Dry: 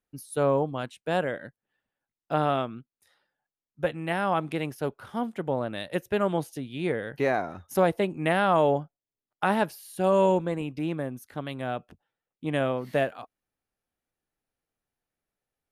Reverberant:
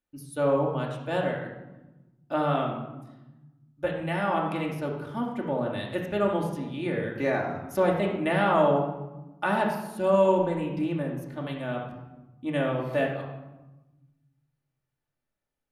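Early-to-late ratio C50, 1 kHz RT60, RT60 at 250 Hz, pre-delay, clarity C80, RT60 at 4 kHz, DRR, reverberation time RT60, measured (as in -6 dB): 4.0 dB, 1.0 s, 1.7 s, 3 ms, 6.5 dB, 0.70 s, -2.0 dB, 1.0 s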